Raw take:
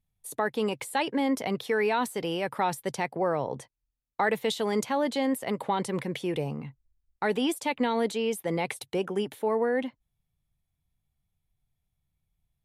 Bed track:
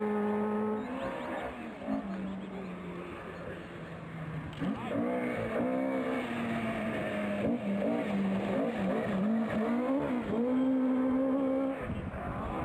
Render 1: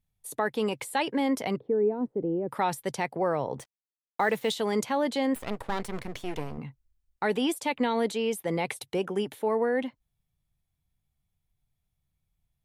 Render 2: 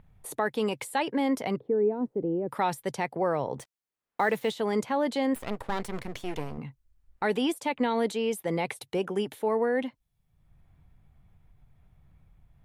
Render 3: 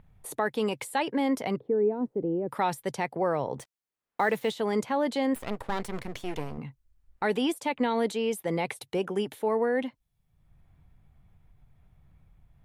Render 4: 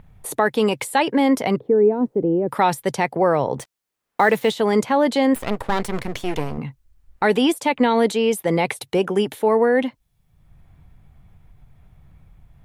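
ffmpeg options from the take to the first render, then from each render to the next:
ffmpeg -i in.wav -filter_complex "[0:a]asettb=1/sr,asplit=3[link_01][link_02][link_03];[link_01]atrim=end=1.564[link_04];[link_02]atrim=start=1.56:end=2.49,asetpts=PTS-STARTPTS,afade=type=in:duration=0.004:curve=qsin,afade=type=out:start_time=0.926:duration=0.004:curve=qsin,lowpass=frequency=370:width_type=q:width=1.6[link_05];[link_03]atrim=start=2.486[link_06];[link_04][link_05]acrossfade=duration=0.004:curve1=hsin:curve2=qsin[link_07];[link_07][link_06]acrossfade=duration=0.004:curve1=qsin:curve2=hsin,asettb=1/sr,asplit=3[link_08][link_09][link_10];[link_08]atrim=end=3.584[link_11];[link_09]atrim=start=3.58:end=4.54,asetpts=PTS-STARTPTS,afade=type=in:duration=0.004:curve=qsin,afade=type=out:start_time=0.956:duration=0.004:curve=qsin,acrusher=bits=7:mix=0:aa=0.5[link_12];[link_10]atrim=start=4.536[link_13];[link_11][link_12]acrossfade=duration=0.004:curve1=hsin:curve2=qsin[link_14];[link_14][link_13]acrossfade=duration=0.004:curve1=qsin:curve2=hsin,asettb=1/sr,asplit=3[link_15][link_16][link_17];[link_15]atrim=end=5.354[link_18];[link_16]atrim=start=5.35:end=6.58,asetpts=PTS-STARTPTS,afade=type=in:duration=0.004:curve=qsin,afade=type=out:start_time=1.226:duration=0.004:curve=qsin,aeval=exprs='max(val(0),0)':channel_layout=same[link_19];[link_17]atrim=start=6.576[link_20];[link_18][link_19]acrossfade=duration=0.004:curve1=hsin:curve2=qsin[link_21];[link_21][link_20]acrossfade=duration=0.004:curve1=qsin:curve2=hsin" out.wav
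ffmpeg -i in.wav -filter_complex "[0:a]acrossover=split=2200[link_01][link_02];[link_01]acompressor=mode=upward:threshold=-40dB:ratio=2.5[link_03];[link_02]alimiter=level_in=5.5dB:limit=-24dB:level=0:latency=1:release=426,volume=-5.5dB[link_04];[link_03][link_04]amix=inputs=2:normalize=0" out.wav
ffmpeg -i in.wav -af anull out.wav
ffmpeg -i in.wav -af "volume=9.5dB" out.wav

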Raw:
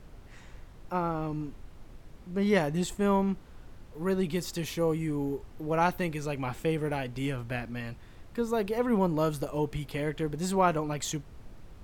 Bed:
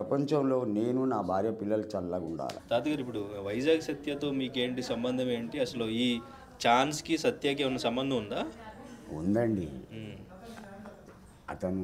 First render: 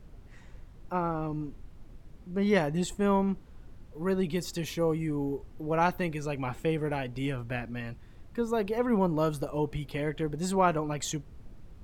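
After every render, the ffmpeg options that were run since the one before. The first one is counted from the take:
ffmpeg -i in.wav -af "afftdn=noise_reduction=6:noise_floor=-50" out.wav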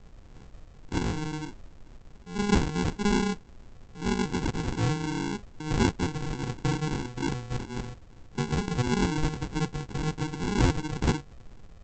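ffmpeg -i in.wav -af "crystalizer=i=5.5:c=0,aresample=16000,acrusher=samples=26:mix=1:aa=0.000001,aresample=44100" out.wav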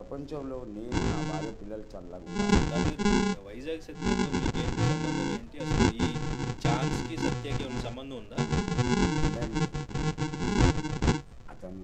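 ffmpeg -i in.wav -i bed.wav -filter_complex "[1:a]volume=-9.5dB[link_01];[0:a][link_01]amix=inputs=2:normalize=0" out.wav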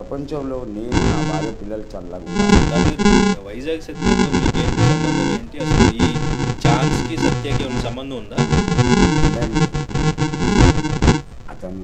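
ffmpeg -i in.wav -af "volume=12dB,alimiter=limit=-1dB:level=0:latency=1" out.wav

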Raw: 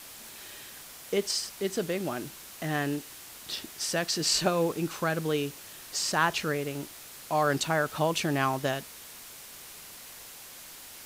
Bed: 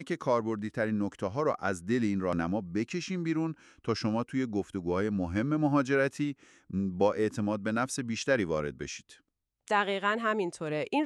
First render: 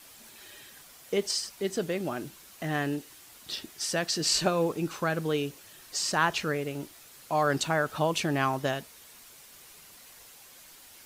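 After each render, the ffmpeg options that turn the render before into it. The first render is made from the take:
ffmpeg -i in.wav -af "afftdn=noise_reduction=7:noise_floor=-47" out.wav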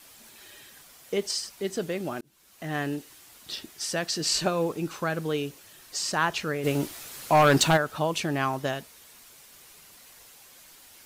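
ffmpeg -i in.wav -filter_complex "[0:a]asplit=3[link_01][link_02][link_03];[link_01]afade=type=out:start_time=6.63:duration=0.02[link_04];[link_02]aeval=exprs='0.224*sin(PI/2*2*val(0)/0.224)':channel_layout=same,afade=type=in:start_time=6.63:duration=0.02,afade=type=out:start_time=7.76:duration=0.02[link_05];[link_03]afade=type=in:start_time=7.76:duration=0.02[link_06];[link_04][link_05][link_06]amix=inputs=3:normalize=0,asplit=2[link_07][link_08];[link_07]atrim=end=2.21,asetpts=PTS-STARTPTS,afade=type=out:start_time=2.206:duration=0.004:curve=hsin[link_09];[link_08]atrim=start=2.21,asetpts=PTS-STARTPTS,afade=type=in:duration=0.58[link_10];[link_09][link_10]concat=n=2:v=0:a=1" out.wav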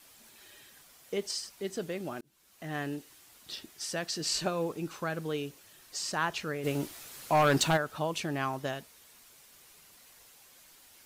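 ffmpeg -i in.wav -af "volume=-5.5dB" out.wav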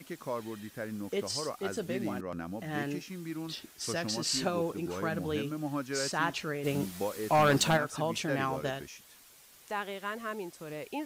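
ffmpeg -i in.wav -i bed.wav -filter_complex "[1:a]volume=-8.5dB[link_01];[0:a][link_01]amix=inputs=2:normalize=0" out.wav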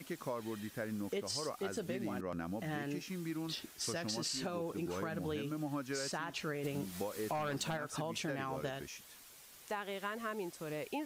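ffmpeg -i in.wav -af "alimiter=limit=-23.5dB:level=0:latency=1:release=270,acompressor=threshold=-35dB:ratio=6" out.wav

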